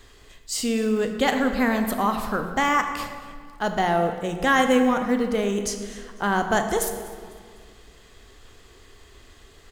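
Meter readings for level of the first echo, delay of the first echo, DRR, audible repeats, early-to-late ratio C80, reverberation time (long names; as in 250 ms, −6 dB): −20.5 dB, 249 ms, 6.0 dB, 2, 8.5 dB, 1.9 s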